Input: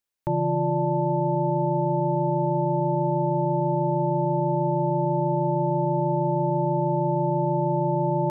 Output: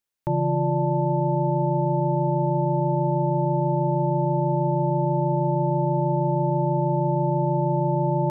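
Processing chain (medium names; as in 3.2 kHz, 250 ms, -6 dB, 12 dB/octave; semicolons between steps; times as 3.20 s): peaking EQ 140 Hz +3.5 dB 0.3 oct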